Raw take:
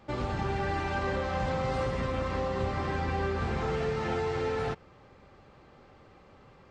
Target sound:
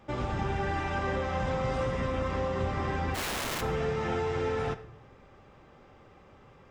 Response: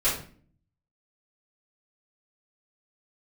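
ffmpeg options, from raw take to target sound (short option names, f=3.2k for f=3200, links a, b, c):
-filter_complex "[0:a]bandreject=f=4.3k:w=6.8,asplit=3[a][b][c];[a]afade=t=out:st=3.14:d=0.02[d];[b]aeval=exprs='(mod(26.6*val(0)+1,2)-1)/26.6':c=same,afade=t=in:st=3.14:d=0.02,afade=t=out:st=3.6:d=0.02[e];[c]afade=t=in:st=3.6:d=0.02[f];[d][e][f]amix=inputs=3:normalize=0,asplit=2[g][h];[1:a]atrim=start_sample=2205,asetrate=33075,aresample=44100,adelay=27[i];[h][i]afir=irnorm=-1:irlink=0,volume=-26.5dB[j];[g][j]amix=inputs=2:normalize=0"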